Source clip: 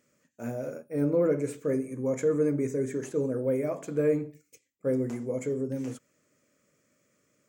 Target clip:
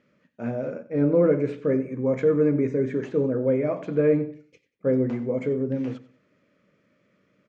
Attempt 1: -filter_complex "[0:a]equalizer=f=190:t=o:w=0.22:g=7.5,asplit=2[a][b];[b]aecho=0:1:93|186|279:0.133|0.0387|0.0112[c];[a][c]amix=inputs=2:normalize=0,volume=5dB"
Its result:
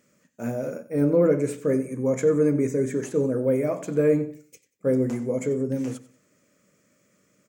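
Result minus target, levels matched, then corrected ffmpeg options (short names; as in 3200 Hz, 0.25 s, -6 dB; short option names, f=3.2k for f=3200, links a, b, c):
4000 Hz band +3.5 dB
-filter_complex "[0:a]lowpass=f=3.9k:w=0.5412,lowpass=f=3.9k:w=1.3066,equalizer=f=190:t=o:w=0.22:g=7.5,asplit=2[a][b];[b]aecho=0:1:93|186|279:0.133|0.0387|0.0112[c];[a][c]amix=inputs=2:normalize=0,volume=5dB"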